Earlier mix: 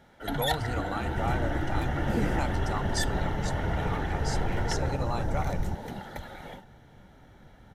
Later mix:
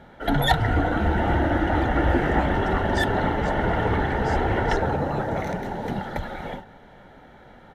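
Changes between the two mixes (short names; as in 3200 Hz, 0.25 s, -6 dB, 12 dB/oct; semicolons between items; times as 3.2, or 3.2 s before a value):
first sound +10.5 dB; second sound: add resonant high-pass 1800 Hz, resonance Q 12; master: add high shelf 4000 Hz -12 dB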